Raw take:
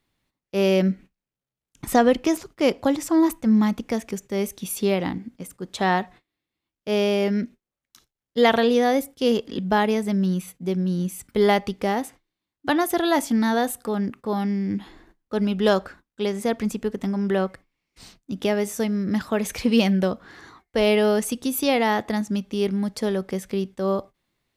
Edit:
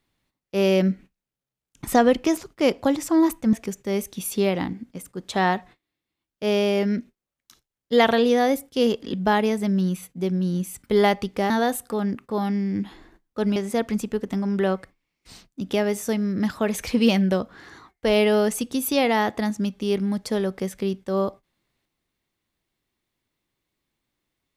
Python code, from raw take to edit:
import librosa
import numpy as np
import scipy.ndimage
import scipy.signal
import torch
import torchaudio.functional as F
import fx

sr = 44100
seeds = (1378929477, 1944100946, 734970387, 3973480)

y = fx.edit(x, sr, fx.cut(start_s=3.53, length_s=0.45),
    fx.cut(start_s=11.95, length_s=1.5),
    fx.cut(start_s=15.51, length_s=0.76), tone=tone)